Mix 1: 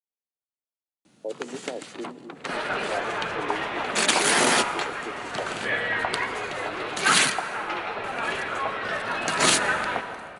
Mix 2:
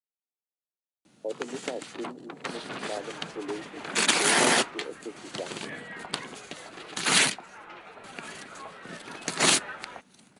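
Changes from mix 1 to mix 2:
second sound -11.0 dB; reverb: off

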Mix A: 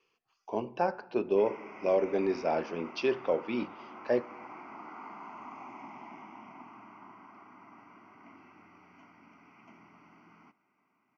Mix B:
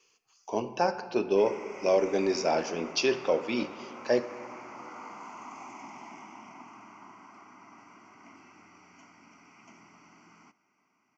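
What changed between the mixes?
speech: send +11.5 dB; master: remove distance through air 280 m

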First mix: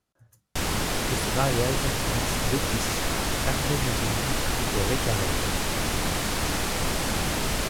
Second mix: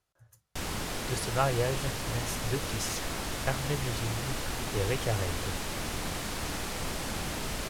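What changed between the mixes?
speech: add peaking EQ 240 Hz -12.5 dB 0.92 oct; background -8.0 dB

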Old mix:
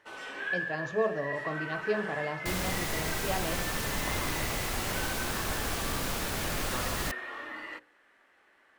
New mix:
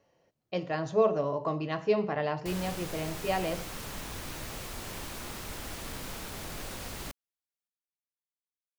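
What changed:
speech +4.0 dB; first sound: muted; second sound -7.0 dB

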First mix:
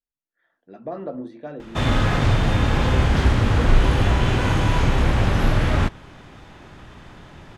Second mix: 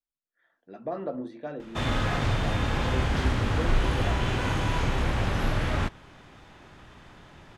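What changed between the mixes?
background -5.0 dB; master: add bass shelf 450 Hz -3.5 dB

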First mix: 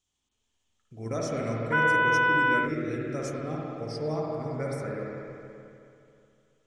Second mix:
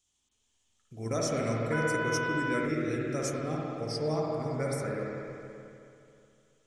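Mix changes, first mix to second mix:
background -11.0 dB; master: add treble shelf 5.4 kHz +10.5 dB

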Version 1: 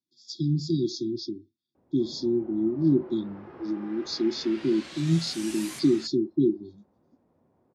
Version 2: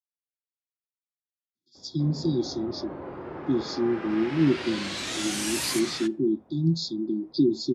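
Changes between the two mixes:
speech: entry +1.55 s; background +9.5 dB

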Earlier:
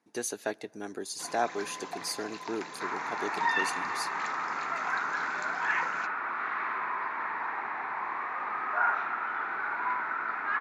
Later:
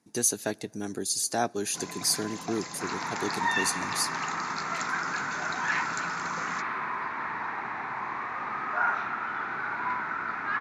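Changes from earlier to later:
first sound: entry +0.55 s; master: add tone controls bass +15 dB, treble +12 dB

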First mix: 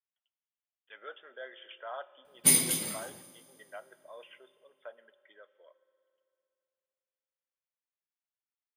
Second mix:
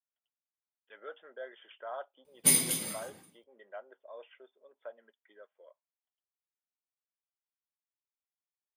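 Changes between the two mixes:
speech: add tilt shelf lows +6 dB, about 1.3 kHz; reverb: off

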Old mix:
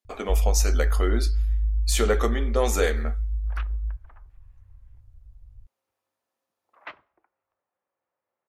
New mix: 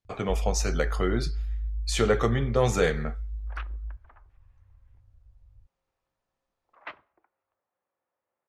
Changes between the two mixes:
speech: remove brick-wall FIR high-pass 200 Hz; first sound: add bass shelf 82 Hz -10.5 dB; master: add distance through air 62 m

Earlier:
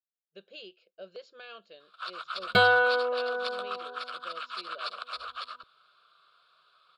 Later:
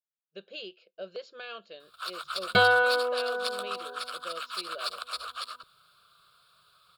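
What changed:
speech +5.0 dB; first sound: remove band-pass 340–3700 Hz

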